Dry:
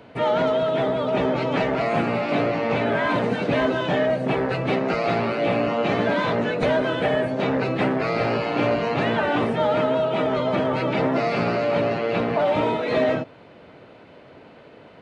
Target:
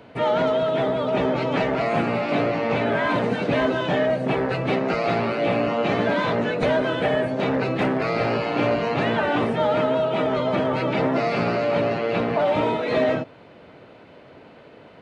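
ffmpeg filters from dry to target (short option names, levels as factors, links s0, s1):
-filter_complex "[0:a]asettb=1/sr,asplit=3[s0][s1][s2];[s0]atrim=end=7.304[s3];[s1]atrim=start=7.3:end=8.12,asetpts=PTS-STARTPTS,afade=t=in:d=0.004:c=qsin,afade=t=out:st=0.816:d=0.004:c=qsin,volume=5.01,asoftclip=hard,volume=0.2[s4];[s2]atrim=start=8.116[s5];[s3][s4]acrossfade=d=0.004:c1=hsin:c2=qsin[s6];[s6][s5]acrossfade=d=0.004:c1=qsin:c2=hsin"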